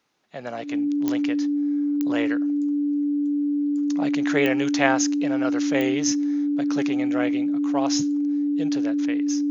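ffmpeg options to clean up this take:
-af "adeclick=t=4,bandreject=f=290:w=30"

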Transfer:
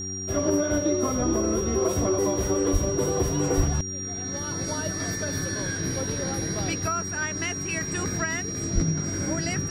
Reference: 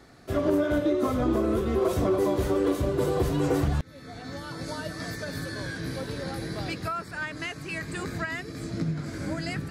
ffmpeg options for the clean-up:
-filter_complex "[0:a]bandreject=f=95.1:t=h:w=4,bandreject=f=190.2:t=h:w=4,bandreject=f=285.3:t=h:w=4,bandreject=f=380.4:t=h:w=4,bandreject=f=5700:w=30,asplit=3[s0][s1][s2];[s0]afade=t=out:st=2.72:d=0.02[s3];[s1]highpass=f=140:w=0.5412,highpass=f=140:w=1.3066,afade=t=in:st=2.72:d=0.02,afade=t=out:st=2.84:d=0.02[s4];[s2]afade=t=in:st=2.84:d=0.02[s5];[s3][s4][s5]amix=inputs=3:normalize=0,asplit=3[s6][s7][s8];[s6]afade=t=out:st=3.56:d=0.02[s9];[s7]highpass=f=140:w=0.5412,highpass=f=140:w=1.3066,afade=t=in:st=3.56:d=0.02,afade=t=out:st=3.68:d=0.02[s10];[s8]afade=t=in:st=3.68:d=0.02[s11];[s9][s10][s11]amix=inputs=3:normalize=0,asplit=3[s12][s13][s14];[s12]afade=t=out:st=8.74:d=0.02[s15];[s13]highpass=f=140:w=0.5412,highpass=f=140:w=1.3066,afade=t=in:st=8.74:d=0.02,afade=t=out:st=8.86:d=0.02[s16];[s14]afade=t=in:st=8.86:d=0.02[s17];[s15][s16][s17]amix=inputs=3:normalize=0,asetnsamples=n=441:p=0,asendcmd='4.34 volume volume -3dB',volume=1"

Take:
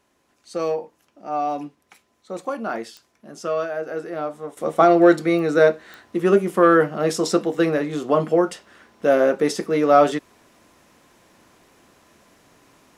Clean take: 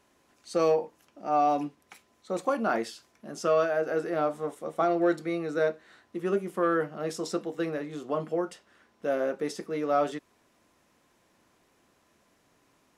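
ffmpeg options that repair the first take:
-af "adeclick=t=4,asetnsamples=n=441:p=0,asendcmd='4.57 volume volume -11.5dB',volume=1"

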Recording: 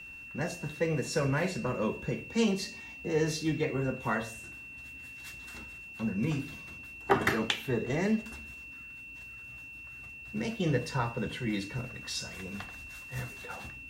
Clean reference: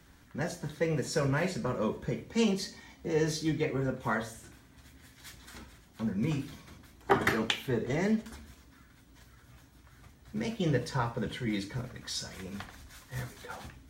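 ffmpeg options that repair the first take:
-af "bandreject=f=2700:w=30"

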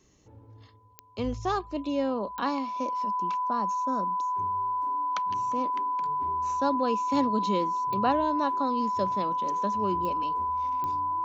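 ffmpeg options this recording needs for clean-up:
-af "adeclick=t=4,bandreject=f=1000:w=30"

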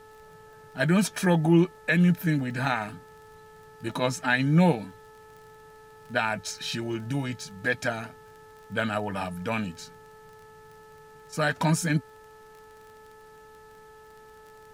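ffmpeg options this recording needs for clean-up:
-af "adeclick=t=4,bandreject=f=434.3:t=h:w=4,bandreject=f=868.6:t=h:w=4,bandreject=f=1302.9:t=h:w=4,bandreject=f=1737.2:t=h:w=4,agate=range=0.0891:threshold=0.00708"

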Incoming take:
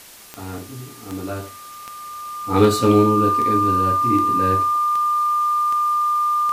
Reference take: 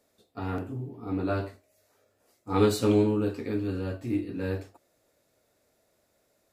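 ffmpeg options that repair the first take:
-af "adeclick=t=4,bandreject=f=1200:w=30,afwtdn=0.0079,asetnsamples=n=441:p=0,asendcmd='2.41 volume volume -7.5dB',volume=1"

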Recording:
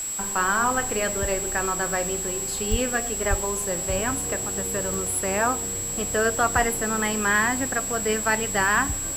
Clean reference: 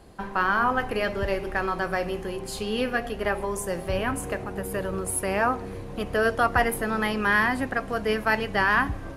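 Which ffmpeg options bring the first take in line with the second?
-filter_complex "[0:a]adeclick=t=4,bandreject=f=7700:w=30,asplit=3[s0][s1][s2];[s0]afade=t=out:st=2.7:d=0.02[s3];[s1]highpass=f=140:w=0.5412,highpass=f=140:w=1.3066,afade=t=in:st=2.7:d=0.02,afade=t=out:st=2.82:d=0.02[s4];[s2]afade=t=in:st=2.82:d=0.02[s5];[s3][s4][s5]amix=inputs=3:normalize=0,asplit=3[s6][s7][s8];[s6]afade=t=out:st=3.29:d=0.02[s9];[s7]highpass=f=140:w=0.5412,highpass=f=140:w=1.3066,afade=t=in:st=3.29:d=0.02,afade=t=out:st=3.41:d=0.02[s10];[s8]afade=t=in:st=3.41:d=0.02[s11];[s9][s10][s11]amix=inputs=3:normalize=0,afwtdn=0.011"

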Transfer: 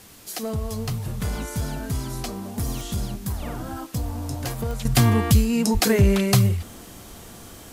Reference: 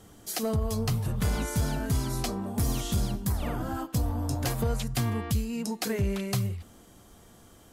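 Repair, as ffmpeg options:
-filter_complex "[0:a]adeclick=t=4,asplit=3[s0][s1][s2];[s0]afade=t=out:st=5.73:d=0.02[s3];[s1]highpass=f=140:w=0.5412,highpass=f=140:w=1.3066,afade=t=in:st=5.73:d=0.02,afade=t=out:st=5.85:d=0.02[s4];[s2]afade=t=in:st=5.85:d=0.02[s5];[s3][s4][s5]amix=inputs=3:normalize=0,afwtdn=0.004,asetnsamples=n=441:p=0,asendcmd='4.85 volume volume -11dB',volume=1"

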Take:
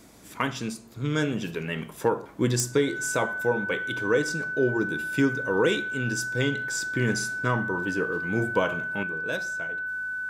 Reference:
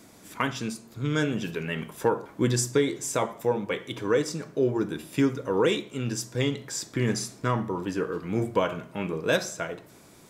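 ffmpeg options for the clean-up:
-af "adeclick=t=4,bandreject=f=54.3:t=h:w=4,bandreject=f=108.6:t=h:w=4,bandreject=f=162.9:t=h:w=4,bandreject=f=217.2:t=h:w=4,bandreject=f=271.5:t=h:w=4,bandreject=f=1500:w=30,asetnsamples=n=441:p=0,asendcmd='9.03 volume volume 8.5dB',volume=1"

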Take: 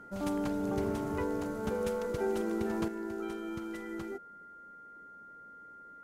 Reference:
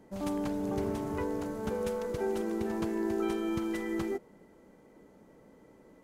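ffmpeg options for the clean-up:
-af "bandreject=f=1400:w=30,asetnsamples=n=441:p=0,asendcmd='2.88 volume volume 7dB',volume=1"

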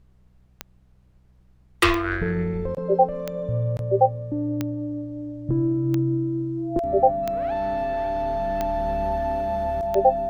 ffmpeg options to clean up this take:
-af "adeclick=t=4,bandreject=f=62.8:t=h:w=4,bandreject=f=125.6:t=h:w=4,bandreject=f=188.4:t=h:w=4,bandreject=f=680:w=30,agate=range=0.0891:threshold=0.00447"

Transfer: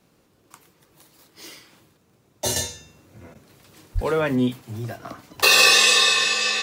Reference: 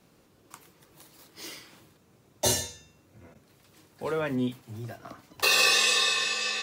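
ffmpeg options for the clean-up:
-filter_complex "[0:a]adeclick=t=4,asplit=3[s0][s1][s2];[s0]afade=t=out:st=3.94:d=0.02[s3];[s1]highpass=f=140:w=0.5412,highpass=f=140:w=1.3066,afade=t=in:st=3.94:d=0.02,afade=t=out:st=4.06:d=0.02[s4];[s2]afade=t=in:st=4.06:d=0.02[s5];[s3][s4][s5]amix=inputs=3:normalize=0,asetnsamples=n=441:p=0,asendcmd='2.56 volume volume -7.5dB',volume=1"

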